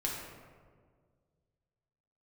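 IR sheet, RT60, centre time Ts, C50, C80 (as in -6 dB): 1.8 s, 74 ms, 1.0 dB, 3.0 dB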